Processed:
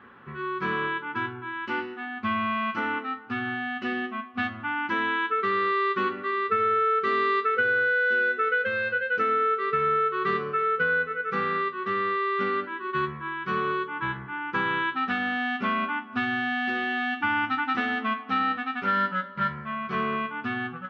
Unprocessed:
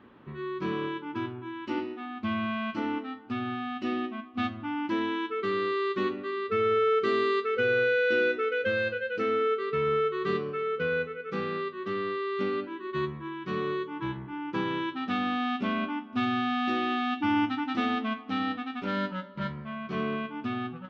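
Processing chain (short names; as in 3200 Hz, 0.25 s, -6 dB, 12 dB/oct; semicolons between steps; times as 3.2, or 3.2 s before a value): bell 1500 Hz +14 dB 1.3 oct; compressor, threshold -20 dBFS, peak gain reduction 7.5 dB; notch comb 310 Hz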